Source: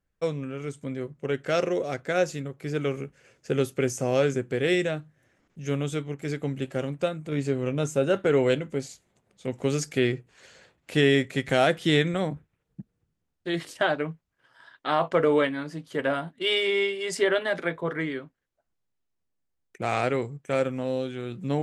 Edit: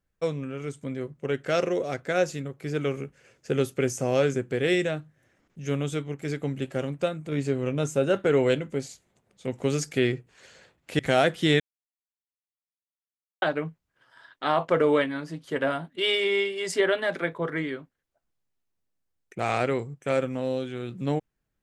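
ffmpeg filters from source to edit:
-filter_complex "[0:a]asplit=4[a][b][c][d];[a]atrim=end=10.992[e];[b]atrim=start=11.418:end=12.03,asetpts=PTS-STARTPTS,afade=t=out:st=0.608:d=0.004:c=hsin[f];[c]atrim=start=12.03:end=13.85,asetpts=PTS-STARTPTS,volume=0[g];[d]atrim=start=13.85,asetpts=PTS-STARTPTS,afade=t=in:d=0.004:c=hsin[h];[f][g][h]concat=n=3:v=0:a=1[i];[e][i]acrossfade=d=0.004:c1=hsin:c2=hsin"

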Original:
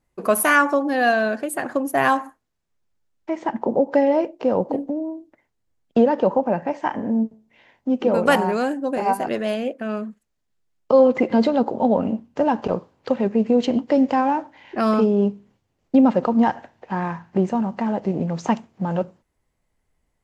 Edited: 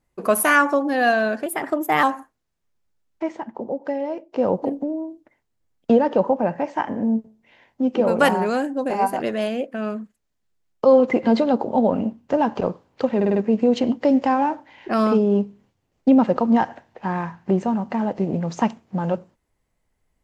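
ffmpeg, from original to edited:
-filter_complex "[0:a]asplit=9[a][b][c][d][e][f][g][h][i];[a]atrim=end=1.464[j];[b]atrim=start=1.46:end=2.1,asetpts=PTS-STARTPTS,asetrate=49392,aresample=44100[k];[c]atrim=start=2.096:end=3.49,asetpts=PTS-STARTPTS,afade=t=out:st=1.254:d=0.14:silence=0.375837[l];[d]atrim=start=3.49:end=4.35,asetpts=PTS-STARTPTS,volume=-8.5dB[m];[e]atrim=start=4.35:end=13.282,asetpts=PTS-STARTPTS,afade=t=in:d=0.14:silence=0.375837[n];[f]atrim=start=13.228:end=13.282[o];[g]atrim=start=13.228:end=13.282[p];[h]atrim=start=13.228:end=13.282[q];[i]atrim=start=13.228[r];[j][k]acrossfade=d=0.004:c1=hsin:c2=hsin[s];[l][m][n]concat=n=3:v=0:a=1[t];[s][t]acrossfade=d=0.004:c1=hsin:c2=hsin[u];[u][o]acrossfade=d=0.004:c1=hsin:c2=hsin[v];[v][p]acrossfade=d=0.004:c1=hsin:c2=hsin[w];[w][q]acrossfade=d=0.004:c1=hsin:c2=hsin[x];[x][r]acrossfade=d=0.004:c1=hsin:c2=hsin"

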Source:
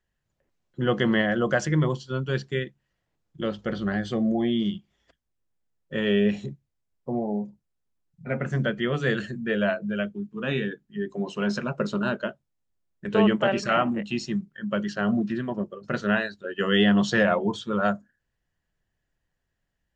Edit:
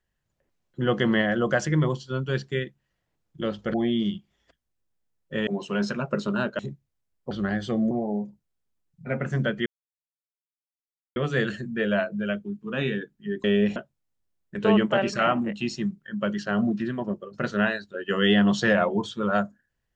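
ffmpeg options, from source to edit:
-filter_complex "[0:a]asplit=9[a][b][c][d][e][f][g][h][i];[a]atrim=end=3.742[j];[b]atrim=start=4.338:end=6.072[k];[c]atrim=start=11.138:end=12.262[l];[d]atrim=start=6.388:end=7.112[m];[e]atrim=start=3.738:end=4.342[n];[f]atrim=start=7.108:end=8.86,asetpts=PTS-STARTPTS,afade=t=out:st=1.748:d=0.004:c=hsin,apad=pad_dur=1.5[o];[g]atrim=start=8.86:end=11.142,asetpts=PTS-STARTPTS,afade=t=in:d=0.004:c=hsin[p];[h]atrim=start=6.068:end=6.392[q];[i]atrim=start=12.258[r];[j][k]acrossfade=d=0.004:c1=hsin:c2=hsin[s];[s][l]acrossfade=d=0.004:c1=hsin:c2=hsin[t];[t][m]acrossfade=d=0.004:c1=hsin:c2=hsin[u];[u][n]acrossfade=d=0.004:c1=hsin:c2=hsin[v];[o][p]concat=n=2:v=0:a=1[w];[v][w]acrossfade=d=0.004:c1=hsin:c2=hsin[x];[x][q]acrossfade=d=0.004:c1=hsin:c2=hsin[y];[y][r]acrossfade=d=0.004:c1=hsin:c2=hsin"

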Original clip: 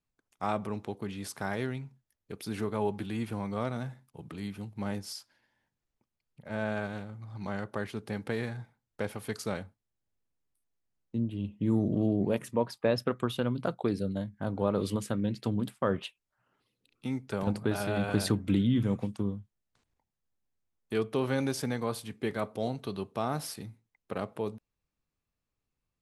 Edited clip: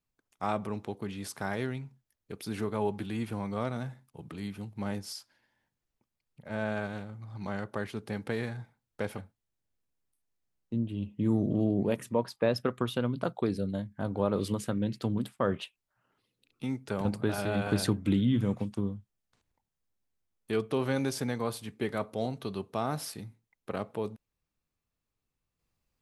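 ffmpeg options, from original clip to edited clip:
-filter_complex "[0:a]asplit=2[a][b];[a]atrim=end=9.182[c];[b]atrim=start=9.598[d];[c][d]acrossfade=d=0.004:c1=hsin:c2=hsin"

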